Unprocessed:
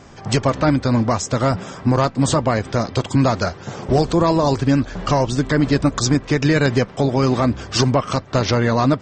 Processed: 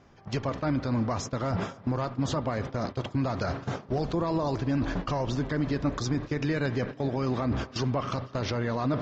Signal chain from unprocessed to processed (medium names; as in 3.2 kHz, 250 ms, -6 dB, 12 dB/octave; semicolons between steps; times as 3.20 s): spring tank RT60 3.2 s, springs 40 ms, chirp 25 ms, DRR 17.5 dB; reverse; compression 6:1, threshold -23 dBFS, peak gain reduction 11.5 dB; reverse; resampled via 16 kHz; gate -31 dBFS, range -15 dB; peak limiter -20.5 dBFS, peak gain reduction 8.5 dB; distance through air 97 m; on a send: tape echo 252 ms, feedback 71%, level -20.5 dB, low-pass 5.9 kHz; on the sum: trim +1.5 dB